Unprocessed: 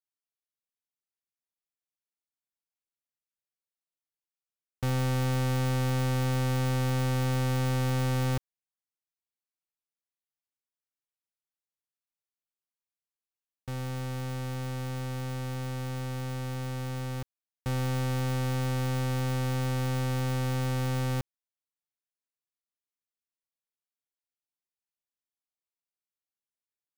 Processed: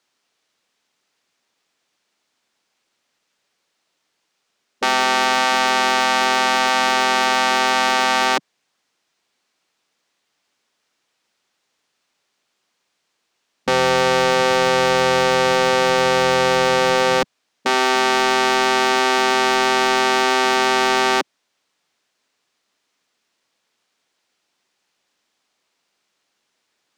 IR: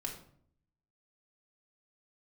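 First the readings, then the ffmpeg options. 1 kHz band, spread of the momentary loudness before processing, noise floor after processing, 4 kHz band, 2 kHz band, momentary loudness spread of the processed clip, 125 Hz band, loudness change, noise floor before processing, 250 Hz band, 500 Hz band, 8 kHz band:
+22.5 dB, 7 LU, −73 dBFS, +21.5 dB, +22.0 dB, 3 LU, −9.0 dB, +14.0 dB, below −85 dBFS, +7.0 dB, +18.0 dB, +16.5 dB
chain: -filter_complex "[0:a]afftfilt=real='re*lt(hypot(re,im),0.0794)':imag='im*lt(hypot(re,im),0.0794)':win_size=1024:overlap=0.75,acrossover=split=160 7000:gain=0.158 1 0.0891[link_01][link_02][link_03];[link_01][link_02][link_03]amix=inputs=3:normalize=0,alimiter=level_in=30.5dB:limit=-1dB:release=50:level=0:latency=1,volume=-2.5dB"

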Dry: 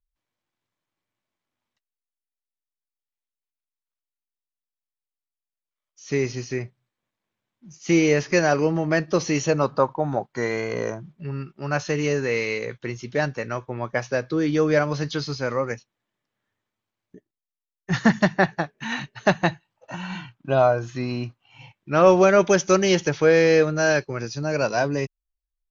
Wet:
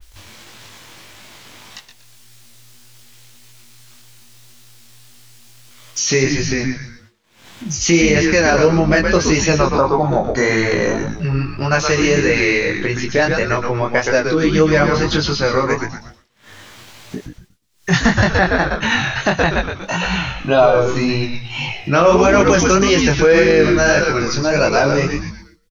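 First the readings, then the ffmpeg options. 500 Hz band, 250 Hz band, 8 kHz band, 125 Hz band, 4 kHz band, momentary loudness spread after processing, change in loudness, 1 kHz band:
+6.0 dB, +7.5 dB, can't be measured, +8.0 dB, +11.5 dB, 10 LU, +7.0 dB, +7.5 dB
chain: -filter_complex "[0:a]acompressor=mode=upward:threshold=-26dB:ratio=2.5,asplit=2[link_01][link_02];[link_02]asplit=5[link_03][link_04][link_05][link_06][link_07];[link_03]adelay=119,afreqshift=-120,volume=-5.5dB[link_08];[link_04]adelay=238,afreqshift=-240,volume=-13.7dB[link_09];[link_05]adelay=357,afreqshift=-360,volume=-21.9dB[link_10];[link_06]adelay=476,afreqshift=-480,volume=-30dB[link_11];[link_07]adelay=595,afreqshift=-600,volume=-38.2dB[link_12];[link_08][link_09][link_10][link_11][link_12]amix=inputs=5:normalize=0[link_13];[link_01][link_13]amix=inputs=2:normalize=0,agate=range=-33dB:threshold=-48dB:ratio=3:detection=peak,flanger=delay=18.5:depth=4.9:speed=1.7,equalizer=frequency=4800:width=0.44:gain=7.5,asplit=2[link_14][link_15];[link_15]acompressor=threshold=-26dB:ratio=6,volume=2.5dB[link_16];[link_14][link_16]amix=inputs=2:normalize=0,alimiter=level_in=6.5dB:limit=-1dB:release=50:level=0:latency=1,adynamicequalizer=threshold=0.0398:dfrequency=3000:dqfactor=0.7:tfrequency=3000:tqfactor=0.7:attack=5:release=100:ratio=0.375:range=3:mode=cutabove:tftype=highshelf,volume=-1dB"

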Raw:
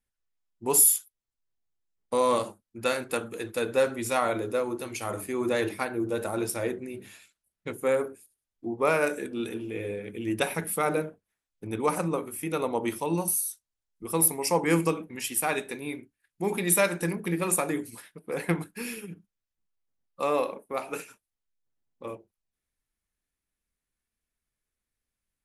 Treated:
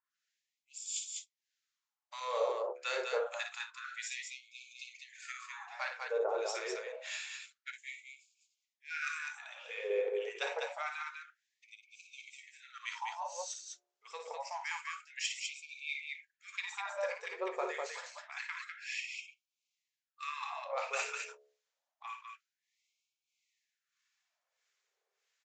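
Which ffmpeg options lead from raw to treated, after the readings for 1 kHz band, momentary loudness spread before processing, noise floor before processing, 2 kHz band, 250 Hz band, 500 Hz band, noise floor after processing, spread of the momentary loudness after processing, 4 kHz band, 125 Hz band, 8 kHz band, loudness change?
−9.5 dB, 16 LU, below −85 dBFS, −5.0 dB, below −25 dB, −11.0 dB, below −85 dBFS, 17 LU, −3.5 dB, below −40 dB, −16.0 dB, −11.5 dB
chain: -filter_complex "[0:a]bandreject=frequency=71.33:width_type=h:width=4,bandreject=frequency=142.66:width_type=h:width=4,bandreject=frequency=213.99:width_type=h:width=4,bandreject=frequency=285.32:width_type=h:width=4,bandreject=frequency=356.65:width_type=h:width=4,bandreject=frequency=427.98:width_type=h:width=4,bandreject=frequency=499.31:width_type=h:width=4,bandreject=frequency=570.64:width_type=h:width=4,bandreject=frequency=641.97:width_type=h:width=4,bandreject=frequency=713.3:width_type=h:width=4,areverse,acompressor=threshold=-39dB:ratio=6,areverse,asoftclip=type=tanh:threshold=-28.5dB,acrossover=split=1200[link_01][link_02];[link_01]aeval=exprs='val(0)*(1-1/2+1/2*cos(2*PI*1.6*n/s))':channel_layout=same[link_03];[link_02]aeval=exprs='val(0)*(1-1/2-1/2*cos(2*PI*1.6*n/s))':channel_layout=same[link_04];[link_03][link_04]amix=inputs=2:normalize=0,aecho=1:1:55.39|201.2:0.447|0.631,aresample=16000,aresample=44100,afftfilt=real='re*gte(b*sr/1024,350*pow(2200/350,0.5+0.5*sin(2*PI*0.27*pts/sr)))':imag='im*gte(b*sr/1024,350*pow(2200/350,0.5+0.5*sin(2*PI*0.27*pts/sr)))':win_size=1024:overlap=0.75,volume=11.5dB"

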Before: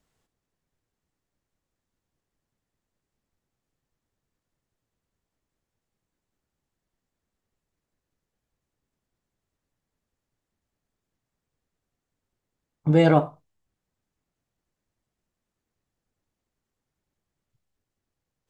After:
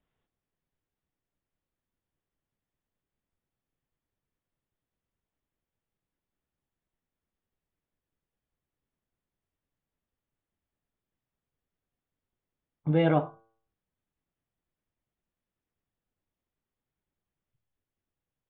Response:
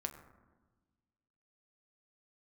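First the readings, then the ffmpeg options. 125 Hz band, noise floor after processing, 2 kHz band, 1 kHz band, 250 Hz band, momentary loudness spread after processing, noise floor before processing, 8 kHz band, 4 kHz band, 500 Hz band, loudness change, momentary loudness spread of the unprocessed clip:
−6.0 dB, below −85 dBFS, −6.0 dB, −6.5 dB, −6.0 dB, 15 LU, below −85 dBFS, can't be measured, −6.5 dB, −6.0 dB, −7.0 dB, 15 LU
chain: -af "aresample=8000,aresample=44100,bandreject=frequency=112.3:width_type=h:width=4,bandreject=frequency=224.6:width_type=h:width=4,bandreject=frequency=336.9:width_type=h:width=4,bandreject=frequency=449.2:width_type=h:width=4,bandreject=frequency=561.5:width_type=h:width=4,bandreject=frequency=673.8:width_type=h:width=4,bandreject=frequency=786.1:width_type=h:width=4,bandreject=frequency=898.4:width_type=h:width=4,bandreject=frequency=1010.7:width_type=h:width=4,bandreject=frequency=1123:width_type=h:width=4,bandreject=frequency=1235.3:width_type=h:width=4,bandreject=frequency=1347.6:width_type=h:width=4,bandreject=frequency=1459.9:width_type=h:width=4,bandreject=frequency=1572.2:width_type=h:width=4,volume=-6dB"

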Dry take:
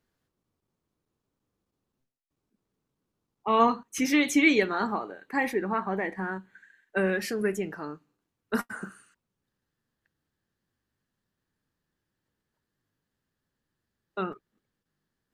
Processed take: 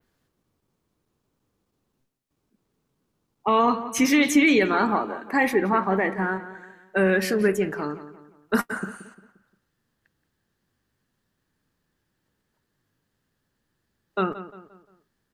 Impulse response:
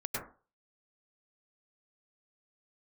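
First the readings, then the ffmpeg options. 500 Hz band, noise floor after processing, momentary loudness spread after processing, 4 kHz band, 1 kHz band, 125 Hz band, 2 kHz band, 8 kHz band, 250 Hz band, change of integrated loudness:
+5.5 dB, −77 dBFS, 14 LU, +4.0 dB, +4.5 dB, +6.5 dB, +4.5 dB, +5.0 dB, +5.5 dB, +4.5 dB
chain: -filter_complex "[0:a]adynamicequalizer=threshold=0.00398:dfrequency=6400:dqfactor=0.81:tfrequency=6400:tqfactor=0.81:attack=5:release=100:ratio=0.375:range=3:mode=cutabove:tftype=bell,alimiter=limit=-17dB:level=0:latency=1:release=27,asplit=2[link_01][link_02];[link_02]adelay=175,lowpass=frequency=2900:poles=1,volume=-13dB,asplit=2[link_03][link_04];[link_04]adelay=175,lowpass=frequency=2900:poles=1,volume=0.42,asplit=2[link_05][link_06];[link_06]adelay=175,lowpass=frequency=2900:poles=1,volume=0.42,asplit=2[link_07][link_08];[link_08]adelay=175,lowpass=frequency=2900:poles=1,volume=0.42[link_09];[link_01][link_03][link_05][link_07][link_09]amix=inputs=5:normalize=0,volume=7dB"

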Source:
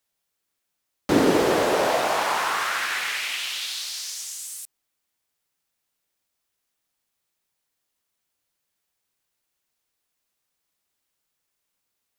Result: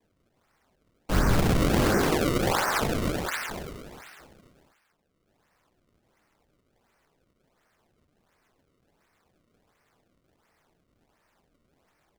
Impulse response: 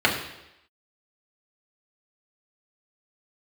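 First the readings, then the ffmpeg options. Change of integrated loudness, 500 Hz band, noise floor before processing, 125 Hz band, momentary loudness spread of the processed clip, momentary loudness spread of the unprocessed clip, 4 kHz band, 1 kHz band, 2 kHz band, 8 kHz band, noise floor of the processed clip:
−2.0 dB, −4.5 dB, −79 dBFS, +10.5 dB, 16 LU, 14 LU, −7.0 dB, −5.0 dB, −5.0 dB, −5.5 dB, −73 dBFS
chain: -filter_complex "[0:a]adynamicequalizer=threshold=0.00891:dfrequency=1800:dqfactor=3:tfrequency=1800:tqfactor=3:attack=5:release=100:ratio=0.375:range=2.5:mode=boostabove:tftype=bell,acompressor=mode=upward:threshold=-40dB:ratio=2.5,highpass=frequency=250:width_type=q:width=0.5412,highpass=frequency=250:width_type=q:width=1.307,lowpass=frequency=2600:width_type=q:width=0.5176,lowpass=frequency=2600:width_type=q:width=0.7071,lowpass=frequency=2600:width_type=q:width=1.932,afreqshift=-310,flanger=delay=20:depth=6.7:speed=1,asplit=8[link_01][link_02][link_03][link_04][link_05][link_06][link_07][link_08];[link_02]adelay=132,afreqshift=-36,volume=-6.5dB[link_09];[link_03]adelay=264,afreqshift=-72,volume=-11.5dB[link_10];[link_04]adelay=396,afreqshift=-108,volume=-16.6dB[link_11];[link_05]adelay=528,afreqshift=-144,volume=-21.6dB[link_12];[link_06]adelay=660,afreqshift=-180,volume=-26.6dB[link_13];[link_07]adelay=792,afreqshift=-216,volume=-31.7dB[link_14];[link_08]adelay=924,afreqshift=-252,volume=-36.7dB[link_15];[link_01][link_09][link_10][link_11][link_12][link_13][link_14][link_15]amix=inputs=8:normalize=0,acrusher=samples=30:mix=1:aa=0.000001:lfo=1:lforange=48:lforate=1.4"

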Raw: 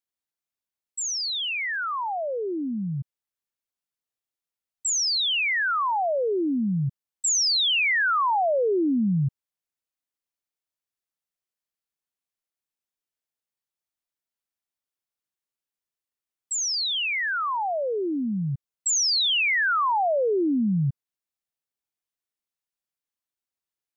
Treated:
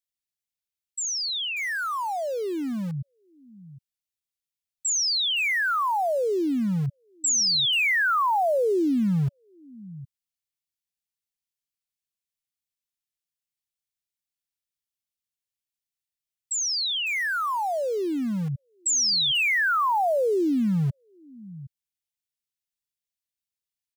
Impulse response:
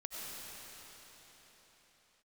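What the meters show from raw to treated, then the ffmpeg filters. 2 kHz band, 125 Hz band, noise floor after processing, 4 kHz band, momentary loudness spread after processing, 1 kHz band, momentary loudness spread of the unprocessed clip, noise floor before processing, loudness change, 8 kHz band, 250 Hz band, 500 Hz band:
0.0 dB, −0.5 dB, below −85 dBFS, −0.5 dB, 11 LU, 0.0 dB, 10 LU, below −85 dBFS, 0.0 dB, can't be measured, 0.0 dB, 0.0 dB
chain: -filter_complex "[0:a]acrossover=split=220|1800[link_01][link_02][link_03];[link_01]aecho=1:1:761:0.188[link_04];[link_02]aeval=exprs='val(0)*gte(abs(val(0)),0.0126)':channel_layout=same[link_05];[link_04][link_05][link_03]amix=inputs=3:normalize=0"

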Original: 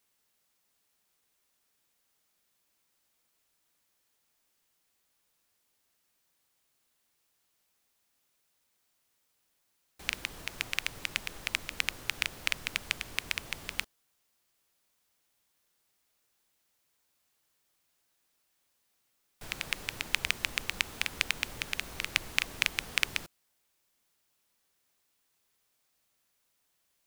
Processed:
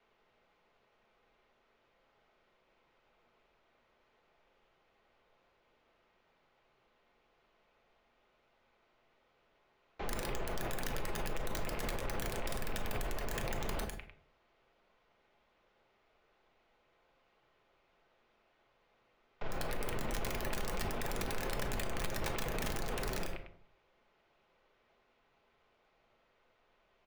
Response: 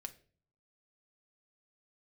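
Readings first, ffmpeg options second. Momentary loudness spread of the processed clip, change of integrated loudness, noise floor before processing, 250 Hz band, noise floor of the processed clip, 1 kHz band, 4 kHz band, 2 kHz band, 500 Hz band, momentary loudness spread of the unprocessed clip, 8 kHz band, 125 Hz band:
5 LU, −6.5 dB, −76 dBFS, +7.5 dB, −74 dBFS, +3.5 dB, −12.0 dB, −10.5 dB, +10.5 dB, 8 LU, −6.0 dB, +7.5 dB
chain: -filter_complex "[0:a]acrossover=split=440 3500:gain=0.0891 1 0.126[link_01][link_02][link_03];[link_01][link_02][link_03]amix=inputs=3:normalize=0,acrossover=split=550|1300[link_04][link_05][link_06];[link_04]acontrast=77[link_07];[link_05]aeval=exprs='(tanh(141*val(0)+0.25)-tanh(0.25))/141':channel_layout=same[link_08];[link_06]bandreject=frequency=1700:width=14[link_09];[link_07][link_08][link_09]amix=inputs=3:normalize=0,asplit=2[link_10][link_11];[link_11]adelay=100,lowpass=frequency=5000:poles=1,volume=-10dB,asplit=2[link_12][link_13];[link_13]adelay=100,lowpass=frequency=5000:poles=1,volume=0.31,asplit=2[link_14][link_15];[link_15]adelay=100,lowpass=frequency=5000:poles=1,volume=0.31[link_16];[link_10][link_12][link_14][link_16]amix=inputs=4:normalize=0,aresample=16000,aeval=exprs='(mod(11.2*val(0)+1,2)-1)/11.2':channel_layout=same,aresample=44100,aemphasis=mode=reproduction:type=riaa,bandreject=frequency=50:width_type=h:width=6,bandreject=frequency=100:width_type=h:width=6,bandreject=frequency=150:width_type=h:width=6,bandreject=frequency=200:width_type=h:width=6,bandreject=frequency=250:width_type=h:width=6,bandreject=frequency=300:width_type=h:width=6,aeval=exprs='(mod(50.1*val(0)+1,2)-1)/50.1':channel_layout=same[link_17];[1:a]atrim=start_sample=2205[link_18];[link_17][link_18]afir=irnorm=-1:irlink=0,alimiter=level_in=20.5dB:limit=-24dB:level=0:latency=1:release=39,volume=-20.5dB,volume=16dB"

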